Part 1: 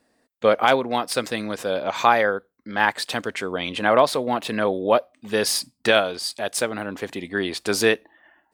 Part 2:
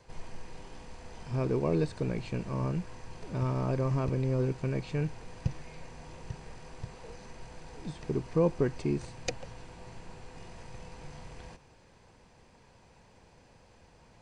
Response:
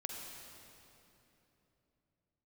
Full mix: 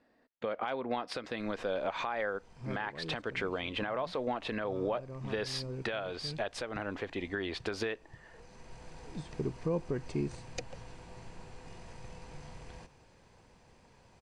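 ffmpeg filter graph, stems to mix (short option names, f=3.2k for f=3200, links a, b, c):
-filter_complex "[0:a]lowpass=3.2k,asubboost=boost=9.5:cutoff=51,acompressor=threshold=-23dB:ratio=6,volume=-3dB,asplit=2[a][b];[1:a]adelay=1300,volume=-2dB[c];[b]apad=whole_len=684030[d];[c][d]sidechaincompress=threshold=-41dB:ratio=6:attack=42:release=852[e];[a][e]amix=inputs=2:normalize=0,alimiter=limit=-23dB:level=0:latency=1:release=187"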